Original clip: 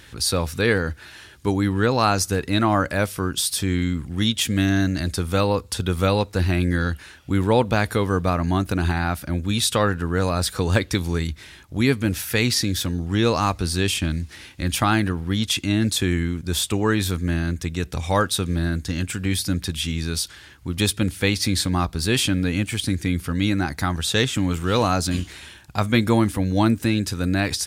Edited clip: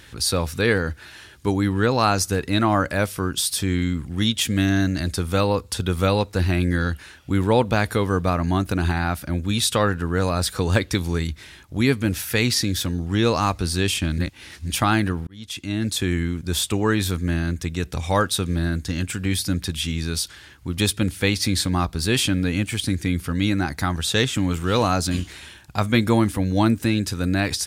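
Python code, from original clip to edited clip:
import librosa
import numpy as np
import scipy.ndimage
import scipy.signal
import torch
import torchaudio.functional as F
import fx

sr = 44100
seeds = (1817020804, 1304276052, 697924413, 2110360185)

y = fx.edit(x, sr, fx.reverse_span(start_s=14.18, length_s=0.52),
    fx.fade_in_span(start_s=15.27, length_s=1.21, curve='qsin'), tone=tone)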